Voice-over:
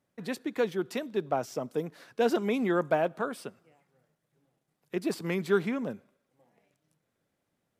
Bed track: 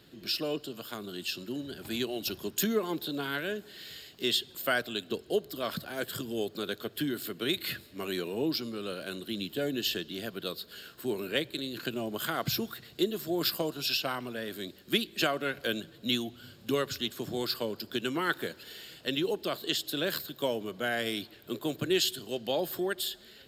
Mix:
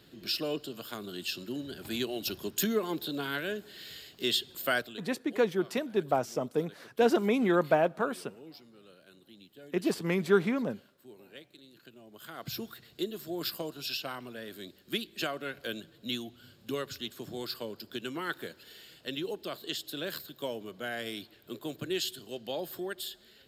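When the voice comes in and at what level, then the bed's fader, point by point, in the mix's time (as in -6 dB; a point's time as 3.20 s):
4.80 s, +1.5 dB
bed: 4.78 s -0.5 dB
5.12 s -19.5 dB
12.03 s -19.5 dB
12.61 s -5.5 dB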